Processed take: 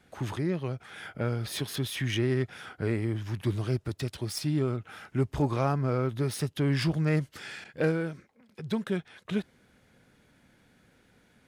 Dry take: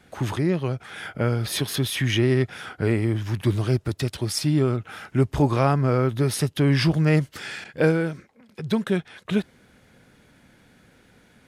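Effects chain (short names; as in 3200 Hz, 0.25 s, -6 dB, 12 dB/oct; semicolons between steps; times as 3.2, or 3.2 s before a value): self-modulated delay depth 0.058 ms; gain -7 dB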